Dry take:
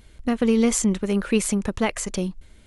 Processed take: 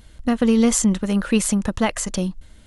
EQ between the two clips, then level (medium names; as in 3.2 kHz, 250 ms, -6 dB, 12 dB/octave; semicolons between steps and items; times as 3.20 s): peaking EQ 400 Hz -9 dB 0.25 oct; peaking EQ 2.3 kHz -7 dB 0.21 oct; +3.5 dB